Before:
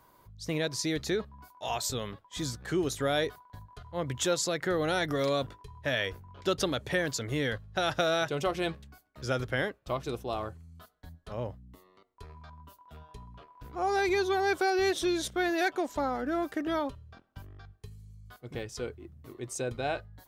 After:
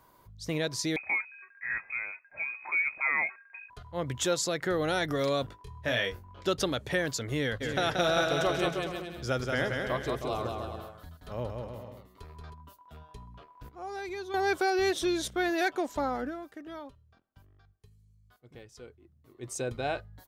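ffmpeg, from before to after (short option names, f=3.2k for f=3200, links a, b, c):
-filter_complex "[0:a]asettb=1/sr,asplit=3[a][b][c];[a]atrim=end=0.964[d];[b]atrim=start=0.96:end=3.7,asetpts=PTS-STARTPTS,afade=t=in:d=0.004:c=qsin,afade=t=out:st=2.736:d=0.004:c=qsin,lowpass=f=2.2k:t=q:w=0.5098,lowpass=f=2.2k:t=q:w=0.6013,lowpass=f=2.2k:t=q:w=0.9,lowpass=f=2.2k:t=q:w=2.563,afreqshift=-2600[e];[c]atrim=start=3.696[f];[d][e]acrossfade=d=0.004:c1=hsin:c2=qsin[g];[g][f]acrossfade=d=0.004:c1=qsin:c2=hsin,asettb=1/sr,asplit=3[h][i][j];[h]atrim=end=5.614[k];[i]atrim=start=5.61:end=6.48,asetpts=PTS-STARTPTS,afade=t=in:d=0.004:c=qsin,afade=t=out:st=0.866:d=0.004:c=qsin,asplit=2[l][m];[m]adelay=25,volume=-5.5dB[n];[l][n]amix=inputs=2:normalize=0,atrim=end_sample=38367[o];[j]atrim=start=6.476[p];[k][o]acrossfade=d=0.004:c1=hsin:c2=qsin[q];[q][p]acrossfade=d=0.004:c1=qsin:c2=hsin,asplit=3[r][s][t];[r]afade=t=out:st=7.6:d=0.02[u];[s]aecho=1:1:180|315|416.2|492.2|549.1:0.631|0.398|0.251|0.158|0.1,afade=t=in:st=7.6:d=0.02,afade=t=out:st=12.53:d=0.02[v];[t]afade=t=in:st=12.53:d=0.02[w];[u][v][w]amix=inputs=3:normalize=0,asplit=5[x][y][z][aa][ab];[x]atrim=end=13.692[ac];[y]atrim=start=13.688:end=14.342,asetpts=PTS-STARTPTS,volume=-10.5dB[ad];[z]atrim=start=14.338:end=16.74,asetpts=PTS-STARTPTS,afade=t=out:st=1.922:d=0.48:c=exp:silence=0.251189[ae];[aa]atrim=start=16.74:end=18.97,asetpts=PTS-STARTPTS,volume=-12dB[af];[ab]atrim=start=18.97,asetpts=PTS-STARTPTS,afade=t=in:d=0.48:c=exp:silence=0.251189[ag];[ac][ad]acrossfade=d=0.004:c1=hsin:c2=hsin[ah];[ae][af][ag]concat=n=3:v=0:a=1[ai];[ah][ai]acrossfade=d=0.004:c1=hsin:c2=hsin"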